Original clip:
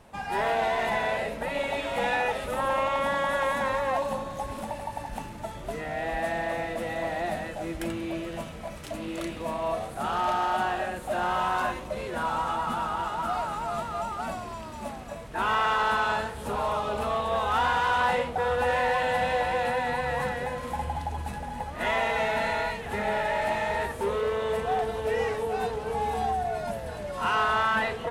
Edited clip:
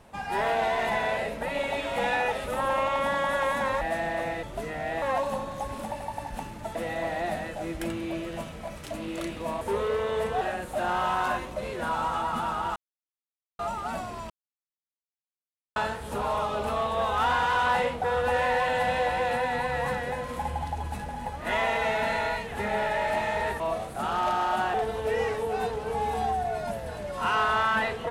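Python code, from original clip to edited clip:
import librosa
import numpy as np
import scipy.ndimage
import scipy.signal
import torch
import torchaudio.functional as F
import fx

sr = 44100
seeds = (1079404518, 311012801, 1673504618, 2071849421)

y = fx.edit(x, sr, fx.swap(start_s=3.81, length_s=1.73, other_s=6.13, other_length_s=0.62),
    fx.swap(start_s=9.61, length_s=1.14, other_s=23.94, other_length_s=0.8),
    fx.silence(start_s=13.1, length_s=0.83),
    fx.silence(start_s=14.64, length_s=1.46), tone=tone)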